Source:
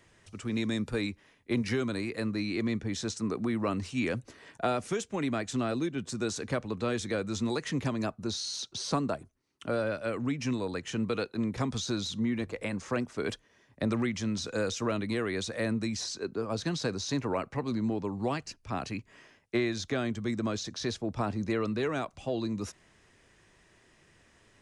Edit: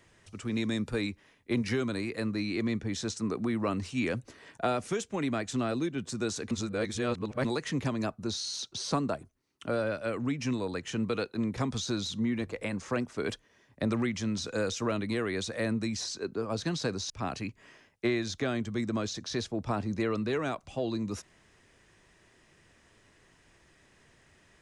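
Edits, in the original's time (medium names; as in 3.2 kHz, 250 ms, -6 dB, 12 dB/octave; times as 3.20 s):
6.51–7.45 s: reverse
17.10–18.60 s: delete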